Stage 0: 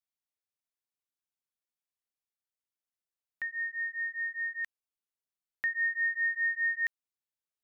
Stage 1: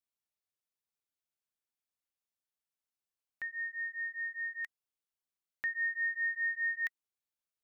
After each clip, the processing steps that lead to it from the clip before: notch 1900 Hz, Q 24; gain -2 dB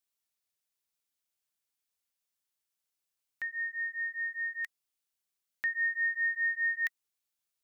high shelf 2200 Hz +7.5 dB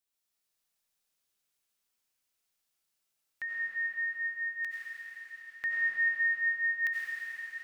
reverb RT60 5.2 s, pre-delay 50 ms, DRR -6.5 dB; gain -1.5 dB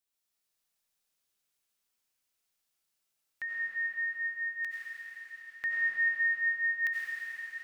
nothing audible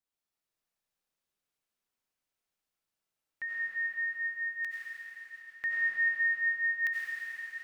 mismatched tape noise reduction decoder only

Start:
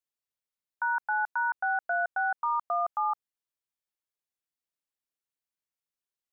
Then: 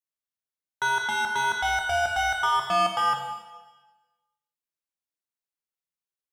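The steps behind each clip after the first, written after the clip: sample leveller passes 3; plate-style reverb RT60 1.2 s, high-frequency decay 1×, DRR 1.5 dB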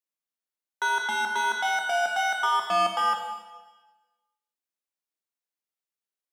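elliptic high-pass 200 Hz, stop band 60 dB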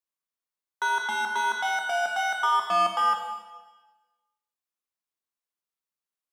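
bell 1100 Hz +5.5 dB 0.42 oct; gain -2 dB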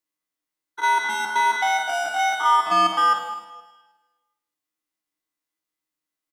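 stepped spectrum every 50 ms; comb 6.4 ms, depth 39%; small resonant body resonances 300/2000 Hz, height 13 dB, ringing for 90 ms; gain +5 dB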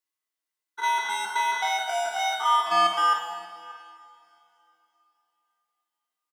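HPF 600 Hz 6 dB/oct; outdoor echo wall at 100 m, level -18 dB; two-slope reverb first 0.26 s, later 3.4 s, from -22 dB, DRR 3.5 dB; gain -3 dB

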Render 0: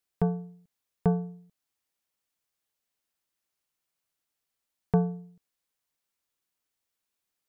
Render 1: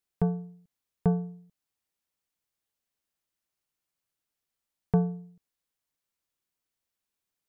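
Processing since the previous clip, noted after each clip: low shelf 280 Hz +4.5 dB; gain -3 dB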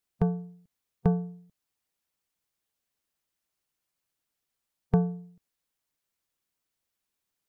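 harmonic-percussive split percussive +4 dB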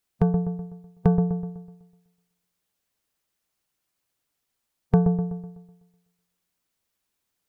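dark delay 0.125 s, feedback 45%, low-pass 1100 Hz, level -7 dB; gain +4.5 dB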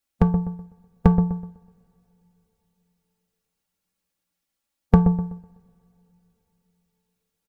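comb 3.6 ms, depth 66%; two-slope reverb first 0.3 s, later 4 s, from -22 dB, DRR 10 dB; upward expander 1.5:1, over -39 dBFS; gain +7.5 dB

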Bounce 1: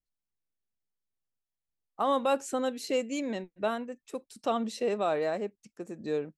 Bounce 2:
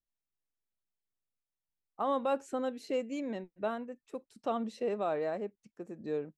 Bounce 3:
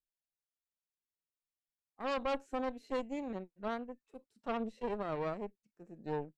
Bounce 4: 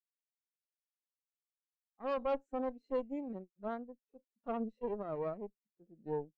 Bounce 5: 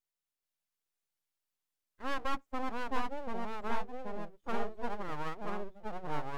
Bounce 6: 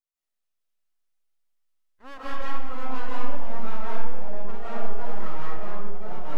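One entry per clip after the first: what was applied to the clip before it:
high shelf 3200 Hz -11.5 dB; gain -3.5 dB
harmonic-percussive split percussive -12 dB; added harmonics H 6 -13 dB, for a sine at -20.5 dBFS; gain -4 dB
spectral expander 1.5:1
full-wave rectifier; echoes that change speed 0.43 s, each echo -2 st, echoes 2; gain +3.5 dB
digital reverb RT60 1.2 s, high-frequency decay 0.7×, pre-delay 0.115 s, DRR -9 dB; gain -7 dB

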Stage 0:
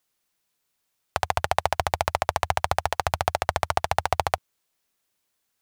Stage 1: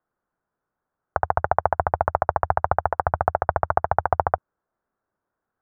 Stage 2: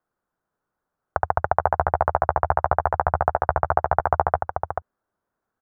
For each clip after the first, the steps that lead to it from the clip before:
Chebyshev low-pass 1500 Hz, order 4; gain +4 dB
outdoor echo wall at 75 m, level -6 dB

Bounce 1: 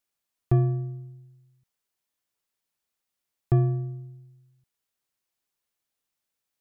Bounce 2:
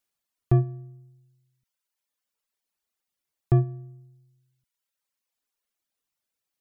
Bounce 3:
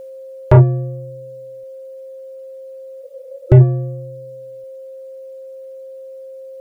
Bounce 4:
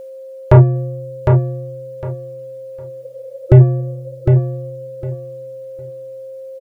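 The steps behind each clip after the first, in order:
reverb removal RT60 1.4 s; gain +1.5 dB
whine 530 Hz -50 dBFS; spectral repair 3.05–3.58, 350–1300 Hz before; sine folder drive 8 dB, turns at -9 dBFS; gain +6.5 dB
feedback echo 0.757 s, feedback 21%, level -5 dB; gain +1 dB

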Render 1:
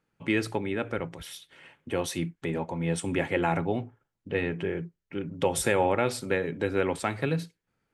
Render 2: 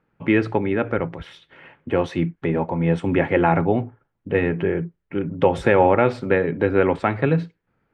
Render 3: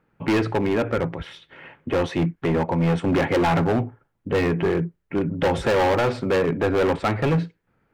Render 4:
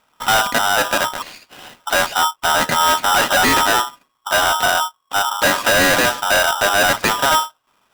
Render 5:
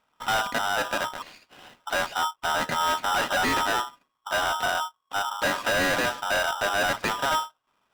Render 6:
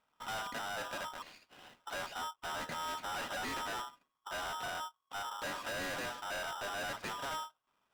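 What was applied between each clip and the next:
LPF 2000 Hz 12 dB/oct; gain +9 dB
hard clip -19 dBFS, distortion -6 dB; gain +2.5 dB
polarity switched at an audio rate 1100 Hz; gain +5 dB
high shelf 6300 Hz -8 dB; gain -9 dB
soft clip -29.5 dBFS, distortion -10 dB; gain -7.5 dB

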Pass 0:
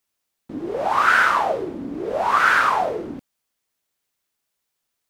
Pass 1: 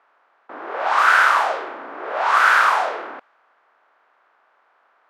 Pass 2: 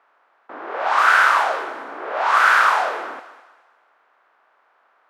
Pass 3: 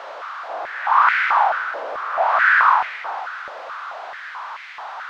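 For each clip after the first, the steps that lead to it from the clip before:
per-bin compression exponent 0.6; HPF 760 Hz 12 dB/oct; low-pass opened by the level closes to 1300 Hz, open at -12 dBFS
thinning echo 0.206 s, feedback 38%, high-pass 380 Hz, level -14.5 dB
zero-crossing step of -25 dBFS; air absorption 200 m; stepped high-pass 4.6 Hz 560–2100 Hz; gain -6 dB

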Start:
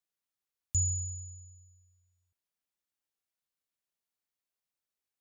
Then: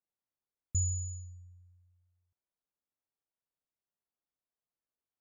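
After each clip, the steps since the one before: low-pass opened by the level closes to 1100 Hz, open at -32 dBFS; LPF 6300 Hz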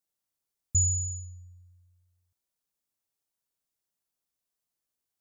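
tone controls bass +2 dB, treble +8 dB; gain +2 dB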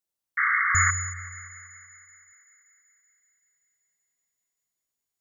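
painted sound noise, 0.37–0.91, 1100–2200 Hz -22 dBFS; thinning echo 0.191 s, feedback 77%, high-pass 990 Hz, level -15.5 dB; gain -1 dB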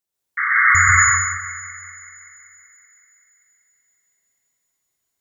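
plate-style reverb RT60 1.3 s, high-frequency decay 0.75×, pre-delay 0.115 s, DRR -6 dB; gain +2.5 dB

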